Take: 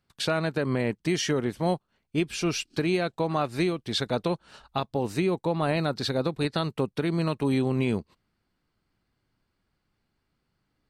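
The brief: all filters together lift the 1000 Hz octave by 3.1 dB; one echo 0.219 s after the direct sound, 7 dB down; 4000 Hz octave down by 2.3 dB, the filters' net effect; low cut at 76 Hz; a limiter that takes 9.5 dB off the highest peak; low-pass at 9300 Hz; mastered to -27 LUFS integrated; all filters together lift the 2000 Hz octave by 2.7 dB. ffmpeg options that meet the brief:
-af "highpass=76,lowpass=9.3k,equalizer=f=1k:t=o:g=3.5,equalizer=f=2k:t=o:g=3.5,equalizer=f=4k:t=o:g=-4,alimiter=limit=-19.5dB:level=0:latency=1,aecho=1:1:219:0.447,volume=3dB"

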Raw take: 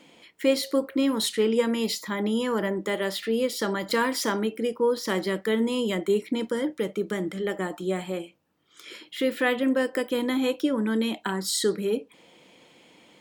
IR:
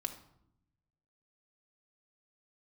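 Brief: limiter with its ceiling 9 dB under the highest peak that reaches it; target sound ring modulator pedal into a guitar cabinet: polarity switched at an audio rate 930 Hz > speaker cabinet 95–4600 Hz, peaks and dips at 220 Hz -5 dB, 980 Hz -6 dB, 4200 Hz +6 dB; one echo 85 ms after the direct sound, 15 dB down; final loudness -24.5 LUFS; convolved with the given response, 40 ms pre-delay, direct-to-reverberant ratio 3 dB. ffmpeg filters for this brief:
-filter_complex "[0:a]alimiter=limit=-18.5dB:level=0:latency=1,aecho=1:1:85:0.178,asplit=2[a][b];[1:a]atrim=start_sample=2205,adelay=40[c];[b][c]afir=irnorm=-1:irlink=0,volume=-3dB[d];[a][d]amix=inputs=2:normalize=0,aeval=exprs='val(0)*sgn(sin(2*PI*930*n/s))':c=same,highpass=95,equalizer=f=220:t=q:w=4:g=-5,equalizer=f=980:t=q:w=4:g=-6,equalizer=f=4.2k:t=q:w=4:g=6,lowpass=f=4.6k:w=0.5412,lowpass=f=4.6k:w=1.3066,volume=1.5dB"

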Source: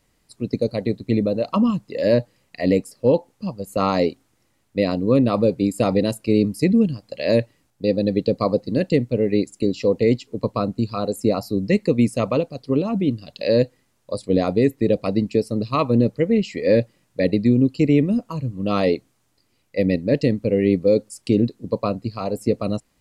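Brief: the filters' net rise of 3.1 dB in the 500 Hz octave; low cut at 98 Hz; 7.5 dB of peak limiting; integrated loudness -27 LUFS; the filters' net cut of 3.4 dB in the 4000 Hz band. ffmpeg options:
-af "highpass=98,equalizer=f=500:t=o:g=3.5,equalizer=f=4k:t=o:g=-4,volume=-4.5dB,alimiter=limit=-15.5dB:level=0:latency=1"

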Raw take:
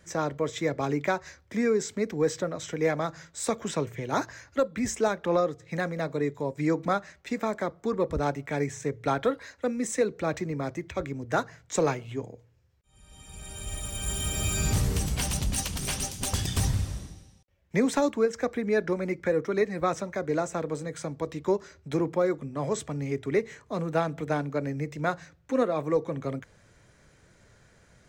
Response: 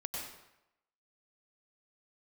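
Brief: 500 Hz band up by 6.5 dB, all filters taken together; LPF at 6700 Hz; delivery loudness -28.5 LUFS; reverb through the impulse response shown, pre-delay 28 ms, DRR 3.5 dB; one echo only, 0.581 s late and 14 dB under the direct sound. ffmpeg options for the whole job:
-filter_complex "[0:a]lowpass=6.7k,equalizer=f=500:t=o:g=7.5,aecho=1:1:581:0.2,asplit=2[a][b];[1:a]atrim=start_sample=2205,adelay=28[c];[b][c]afir=irnorm=-1:irlink=0,volume=-4.5dB[d];[a][d]amix=inputs=2:normalize=0,volume=-5.5dB"

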